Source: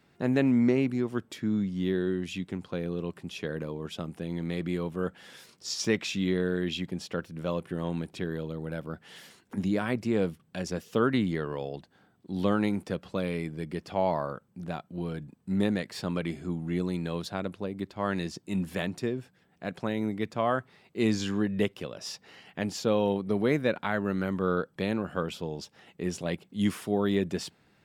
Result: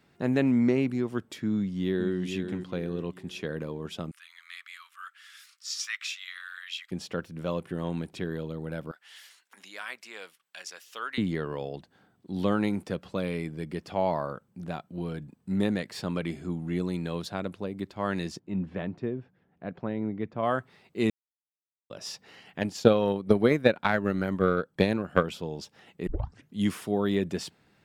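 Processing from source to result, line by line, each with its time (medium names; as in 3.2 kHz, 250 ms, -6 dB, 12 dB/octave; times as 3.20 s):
1.55–2.19 s: echo throw 440 ms, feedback 35%, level -7.5 dB
4.11–6.91 s: Chebyshev high-pass 1.2 kHz, order 5
8.91–11.18 s: high-pass 1.4 kHz
18.39–20.43 s: tape spacing loss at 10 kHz 37 dB
21.10–21.90 s: mute
22.60–25.24 s: transient shaper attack +11 dB, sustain -5 dB
26.07 s: tape start 0.49 s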